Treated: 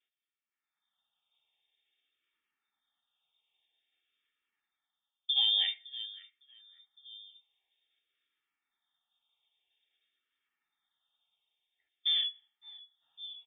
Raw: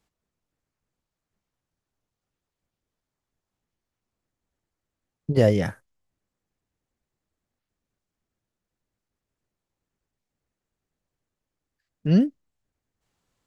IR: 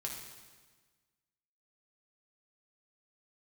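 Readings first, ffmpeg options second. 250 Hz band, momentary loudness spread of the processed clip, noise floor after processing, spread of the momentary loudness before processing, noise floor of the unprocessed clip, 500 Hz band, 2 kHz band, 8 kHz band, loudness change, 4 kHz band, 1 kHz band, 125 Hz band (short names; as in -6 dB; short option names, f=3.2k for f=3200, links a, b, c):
under -40 dB, 21 LU, under -85 dBFS, 12 LU, under -85 dBFS, under -40 dB, -9.0 dB, n/a, -6.5 dB, +17.5 dB, -16.0 dB, under -40 dB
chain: -filter_complex "[0:a]flanger=delay=9:depth=5.9:regen=52:speed=0.19:shape=sinusoidal,asplit=2[a][b];[b]asoftclip=type=tanh:threshold=-22dB,volume=-4dB[c];[a][c]amix=inputs=2:normalize=0,asplit=2[d][e];[e]adelay=559,lowpass=f=820:p=1,volume=-19.5dB,asplit=2[f][g];[g]adelay=559,lowpass=f=820:p=1,volume=0.42,asplit=2[h][i];[i]adelay=559,lowpass=f=820:p=1,volume=0.42[j];[d][f][h][j]amix=inputs=4:normalize=0,dynaudnorm=f=470:g=3:m=14.5dB,highpass=f=67:p=1,aecho=1:1:2.1:0.49,lowpass=f=3.1k:t=q:w=0.5098,lowpass=f=3.1k:t=q:w=0.6013,lowpass=f=3.1k:t=q:w=0.9,lowpass=f=3.1k:t=q:w=2.563,afreqshift=-3700,asplit=2[k][l];[1:a]atrim=start_sample=2205,asetrate=79380,aresample=44100[m];[l][m]afir=irnorm=-1:irlink=0,volume=-16.5dB[n];[k][n]amix=inputs=2:normalize=0,alimiter=limit=-9dB:level=0:latency=1:release=178,asplit=2[o][p];[p]afreqshift=-0.5[q];[o][q]amix=inputs=2:normalize=1,volume=-8.5dB"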